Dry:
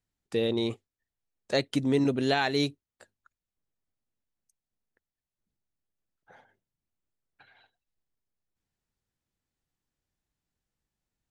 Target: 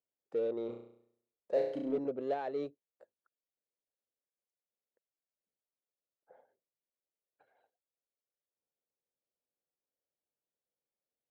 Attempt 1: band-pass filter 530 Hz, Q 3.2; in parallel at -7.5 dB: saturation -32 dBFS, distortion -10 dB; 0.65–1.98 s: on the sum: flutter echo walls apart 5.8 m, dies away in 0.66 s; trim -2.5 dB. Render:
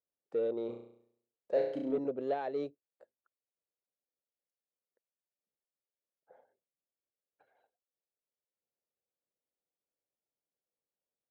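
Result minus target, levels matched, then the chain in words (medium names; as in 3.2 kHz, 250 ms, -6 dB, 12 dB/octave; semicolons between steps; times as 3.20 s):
saturation: distortion -5 dB
band-pass filter 530 Hz, Q 3.2; in parallel at -7.5 dB: saturation -40.5 dBFS, distortion -5 dB; 0.65–1.98 s: on the sum: flutter echo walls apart 5.8 m, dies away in 0.66 s; trim -2.5 dB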